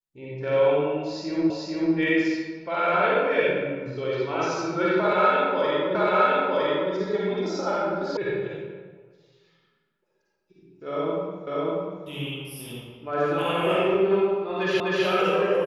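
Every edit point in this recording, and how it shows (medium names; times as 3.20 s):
1.50 s: repeat of the last 0.44 s
5.95 s: repeat of the last 0.96 s
8.17 s: sound stops dead
11.47 s: repeat of the last 0.59 s
14.80 s: repeat of the last 0.25 s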